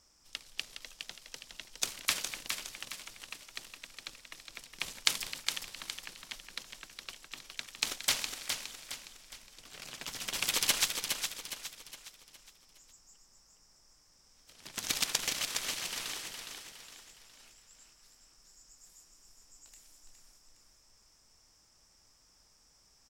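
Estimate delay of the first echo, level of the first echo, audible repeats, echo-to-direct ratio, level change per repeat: 413 ms, -6.0 dB, 4, -5.0 dB, -7.5 dB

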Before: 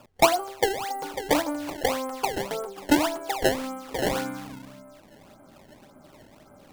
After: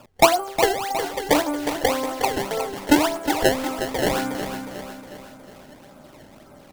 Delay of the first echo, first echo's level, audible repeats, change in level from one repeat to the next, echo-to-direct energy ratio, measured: 362 ms, -9.0 dB, 5, -6.0 dB, -8.0 dB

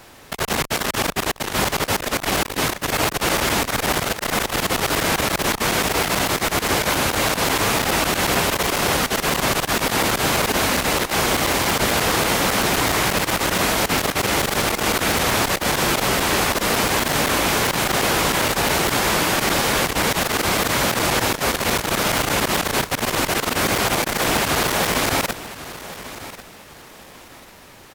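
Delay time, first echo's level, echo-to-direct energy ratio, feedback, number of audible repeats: 1093 ms, -15.0 dB, -14.5 dB, 27%, 2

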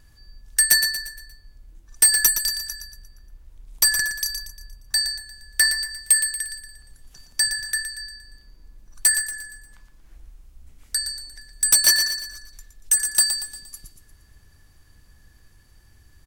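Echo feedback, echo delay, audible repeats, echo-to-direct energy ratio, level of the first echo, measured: 45%, 117 ms, 4, -7.5 dB, -8.5 dB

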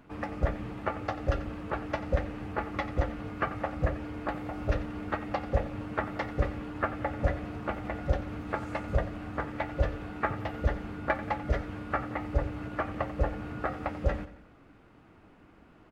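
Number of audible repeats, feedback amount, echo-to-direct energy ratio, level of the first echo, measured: 3, 43%, -13.5 dB, -14.5 dB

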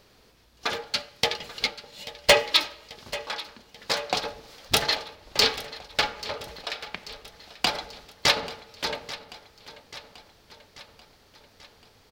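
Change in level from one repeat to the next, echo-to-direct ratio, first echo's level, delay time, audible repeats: -4.5 dB, -14.5 dB, -16.5 dB, 837 ms, 4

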